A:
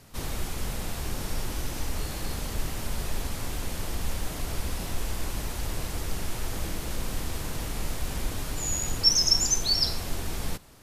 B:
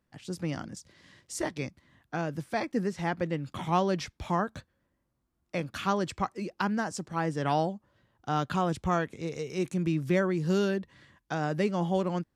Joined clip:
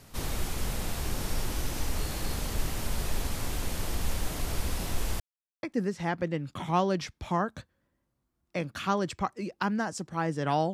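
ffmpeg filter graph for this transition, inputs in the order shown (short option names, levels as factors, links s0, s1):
-filter_complex "[0:a]apad=whole_dur=10.73,atrim=end=10.73,asplit=2[s0][s1];[s0]atrim=end=5.2,asetpts=PTS-STARTPTS,afade=t=out:st=5.196:d=0.004:c=hsin[s2];[s1]atrim=start=5.2:end=5.63,asetpts=PTS-STARTPTS,volume=0[s3];[1:a]atrim=start=2.62:end=7.72,asetpts=PTS-STARTPTS,afade=t=in:d=0.004:c=hsin[s4];[s2][s3][s4]concat=n=3:v=0:a=1"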